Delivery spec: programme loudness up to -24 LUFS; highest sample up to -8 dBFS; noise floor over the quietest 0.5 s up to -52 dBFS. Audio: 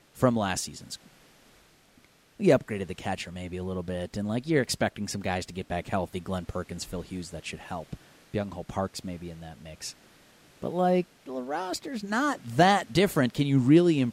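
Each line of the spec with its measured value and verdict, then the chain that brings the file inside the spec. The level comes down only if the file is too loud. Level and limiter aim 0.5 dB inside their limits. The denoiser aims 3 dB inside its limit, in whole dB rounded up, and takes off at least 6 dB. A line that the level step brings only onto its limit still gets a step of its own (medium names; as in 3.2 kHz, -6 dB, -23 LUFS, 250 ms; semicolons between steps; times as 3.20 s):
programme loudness -28.0 LUFS: pass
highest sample -7.0 dBFS: fail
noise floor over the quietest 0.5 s -60 dBFS: pass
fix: peak limiter -8.5 dBFS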